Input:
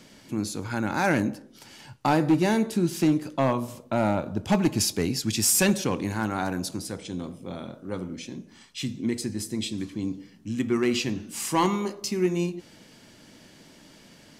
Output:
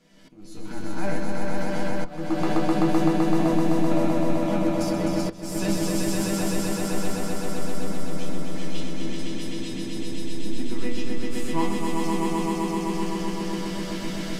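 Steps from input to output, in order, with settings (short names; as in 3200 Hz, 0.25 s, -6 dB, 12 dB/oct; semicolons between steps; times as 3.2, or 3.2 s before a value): recorder AGC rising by 43 dB/s; high shelf 2600 Hz -4.5 dB; in parallel at -4 dB: backlash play -17 dBFS; on the sum: resonator bank E3 minor, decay 0.2 s; swelling echo 0.128 s, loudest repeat 5, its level -3 dB; auto swell 0.398 s; on a send at -6 dB: reverb RT60 0.20 s, pre-delay 3 ms; on the sum: gain +3 dB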